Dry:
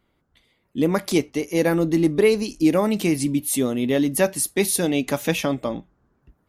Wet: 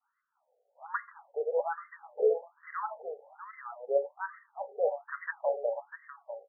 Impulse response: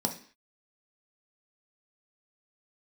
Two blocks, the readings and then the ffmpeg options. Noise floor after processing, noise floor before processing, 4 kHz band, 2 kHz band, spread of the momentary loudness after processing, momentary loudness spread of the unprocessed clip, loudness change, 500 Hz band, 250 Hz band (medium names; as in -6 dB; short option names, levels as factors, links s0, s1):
-80 dBFS, -69 dBFS, under -40 dB, -11.5 dB, 16 LU, 6 LU, -13.0 dB, -9.0 dB, under -40 dB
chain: -filter_complex "[0:a]lowpass=f=4200:w=0.5412,lowpass=f=4200:w=1.3066,bandreject=f=60:t=h:w=6,bandreject=f=120:t=h:w=6,bandreject=f=180:t=h:w=6,bandreject=f=240:t=h:w=6,bandreject=f=300:t=h:w=6,bandreject=f=360:t=h:w=6,bandreject=f=420:t=h:w=6,adynamicequalizer=threshold=0.0224:dfrequency=560:dqfactor=0.79:tfrequency=560:tqfactor=0.79:attack=5:release=100:ratio=0.375:range=4:mode=cutabove:tftype=bell,aecho=1:1:646:0.316,acrusher=bits=6:mode=log:mix=0:aa=0.000001,equalizer=f=2200:w=1.1:g=-3,asplit=2[s0][s1];[1:a]atrim=start_sample=2205,afade=t=out:st=0.17:d=0.01,atrim=end_sample=7938[s2];[s1][s2]afir=irnorm=-1:irlink=0,volume=0.2[s3];[s0][s3]amix=inputs=2:normalize=0,afftfilt=real='re*between(b*sr/1024,550*pow(1500/550,0.5+0.5*sin(2*PI*1.2*pts/sr))/1.41,550*pow(1500/550,0.5+0.5*sin(2*PI*1.2*pts/sr))*1.41)':imag='im*between(b*sr/1024,550*pow(1500/550,0.5+0.5*sin(2*PI*1.2*pts/sr))/1.41,550*pow(1500/550,0.5+0.5*sin(2*PI*1.2*pts/sr))*1.41)':win_size=1024:overlap=0.75,volume=0.841"